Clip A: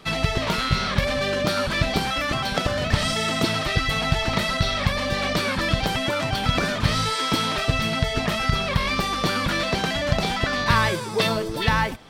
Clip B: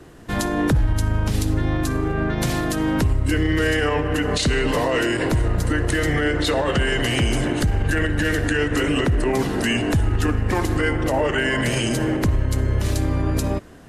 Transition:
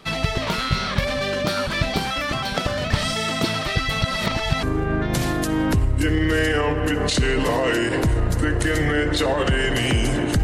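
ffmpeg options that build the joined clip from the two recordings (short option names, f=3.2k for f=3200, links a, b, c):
-filter_complex "[0:a]apad=whole_dur=10.43,atrim=end=10.43,asplit=2[a][b];[a]atrim=end=4.022[c];[b]atrim=start=4.018:end=4.632,asetpts=PTS-STARTPTS,areverse[d];[1:a]atrim=start=1.908:end=7.71[e];[c][d]acrossfade=d=0.004:c1=hsin:c2=hsin[f];[f][e]acrossfade=d=0.004:c1=hsin:c2=hsin"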